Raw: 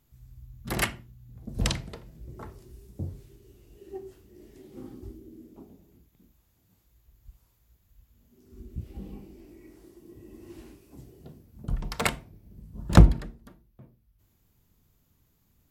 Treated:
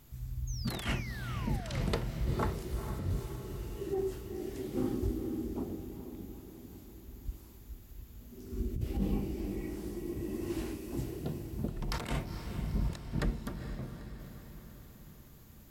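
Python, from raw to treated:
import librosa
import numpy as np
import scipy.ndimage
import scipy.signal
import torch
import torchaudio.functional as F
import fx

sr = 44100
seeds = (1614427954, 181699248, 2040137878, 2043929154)

y = fx.over_compress(x, sr, threshold_db=-39.0, ratio=-1.0)
y = fx.spec_paint(y, sr, seeds[0], shape='fall', start_s=0.47, length_s=1.36, low_hz=470.0, high_hz=6700.0, level_db=-50.0)
y = fx.echo_diffused(y, sr, ms=456, feedback_pct=58, wet_db=-9)
y = y * librosa.db_to_amplitude(2.0)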